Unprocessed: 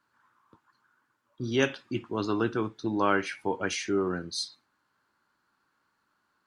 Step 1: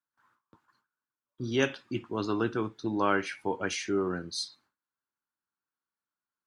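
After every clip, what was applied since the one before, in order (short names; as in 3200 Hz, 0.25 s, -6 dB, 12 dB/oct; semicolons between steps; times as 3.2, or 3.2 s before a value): gate with hold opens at -57 dBFS; gain -1.5 dB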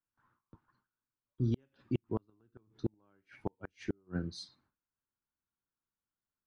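RIAA curve playback; flipped gate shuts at -16 dBFS, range -41 dB; gain -5 dB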